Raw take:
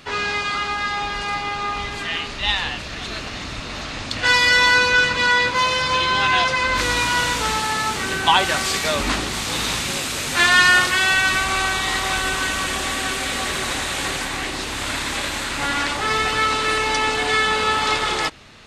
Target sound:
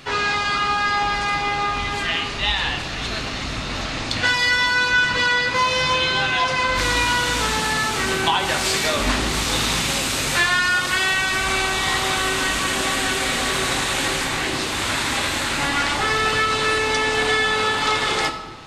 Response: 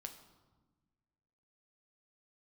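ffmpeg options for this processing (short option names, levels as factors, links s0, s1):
-filter_complex "[0:a]acompressor=threshold=0.112:ratio=6[s0];[1:a]atrim=start_sample=2205[s1];[s0][s1]afir=irnorm=-1:irlink=0,volume=2.37"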